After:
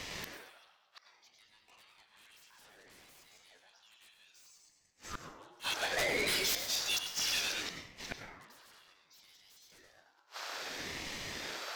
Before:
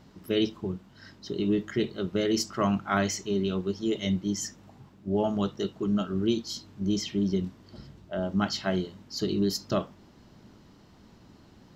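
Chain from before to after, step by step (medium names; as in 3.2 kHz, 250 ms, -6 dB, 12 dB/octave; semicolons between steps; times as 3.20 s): backward echo that repeats 109 ms, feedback 48%, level -8 dB; steep high-pass 910 Hz 36 dB/octave; sine folder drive 20 dB, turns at -16.5 dBFS; 5.52–7.62 s: valve stage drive 28 dB, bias 0.35; inverted gate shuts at -25 dBFS, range -38 dB; plate-style reverb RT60 1.1 s, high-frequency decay 0.45×, pre-delay 85 ms, DRR 4.5 dB; ring modulator with a swept carrier 590 Hz, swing 60%, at 0.63 Hz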